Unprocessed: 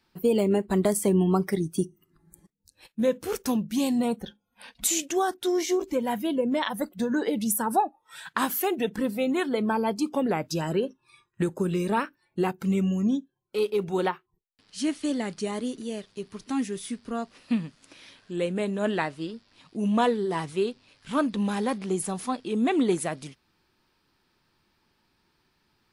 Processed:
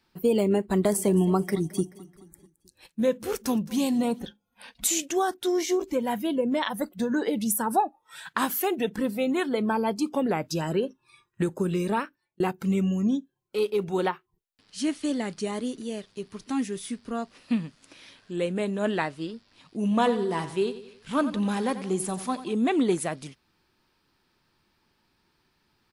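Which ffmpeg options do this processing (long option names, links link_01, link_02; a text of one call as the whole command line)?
ffmpeg -i in.wav -filter_complex "[0:a]asplit=3[link_01][link_02][link_03];[link_01]afade=type=out:start_time=0.87:duration=0.02[link_04];[link_02]aecho=1:1:216|432|648|864:0.112|0.0561|0.0281|0.014,afade=type=in:start_time=0.87:duration=0.02,afade=type=out:start_time=4.25:duration=0.02[link_05];[link_03]afade=type=in:start_time=4.25:duration=0.02[link_06];[link_04][link_05][link_06]amix=inputs=3:normalize=0,asettb=1/sr,asplit=3[link_07][link_08][link_09];[link_07]atrim=end=19.824[link_10];[link_08]atrim=start=19.82:end=22.54,asetpts=PTS-STARTPTS,afade=type=in:duration=0.004:curve=qsin,afade=type=out:start_time=2.716:duration=0.004:curve=qsin,aecho=1:1:90|180|270|360:0.224|0.101|0.0453|0.0204,atrim=end_sample=119952[link_11];[link_09]atrim=start=22.536[link_12];[link_10][link_11]acrossfade=duration=0.004:curve1=hsin:curve2=qsin[link_13];[link_13][link_12]acrossfade=duration=0.004:curve1=qsin:curve2=hsin,asplit=2[link_14][link_15];[link_14]atrim=end=12.4,asetpts=PTS-STARTPTS,afade=type=out:start_time=11.89:duration=0.51[link_16];[link_15]atrim=start=12.4,asetpts=PTS-STARTPTS,afade=type=in:duration=0.004:curve=hsin[link_17];[link_16][link_17]concat=n=2:v=0:a=1" out.wav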